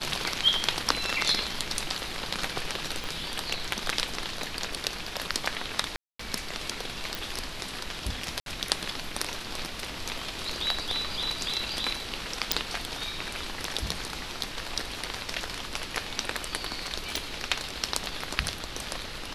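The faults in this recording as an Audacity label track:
3.040000	3.040000	pop
5.960000	6.190000	gap 0.234 s
7.150000	7.150000	pop
8.400000	8.460000	gap 62 ms
12.520000	12.520000	pop
17.160000	17.160000	pop

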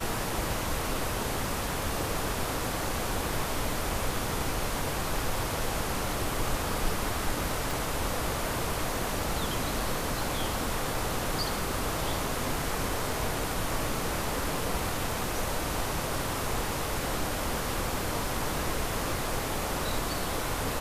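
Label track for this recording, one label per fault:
7.710000	7.710000	pop

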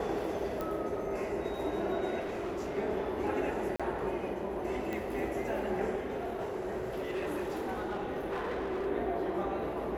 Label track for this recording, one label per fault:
0.610000	0.610000	pop -23 dBFS
2.190000	2.790000	clipped -33 dBFS
3.760000	3.800000	gap 36 ms
4.930000	4.930000	pop -23 dBFS
5.960000	8.870000	clipped -31 dBFS

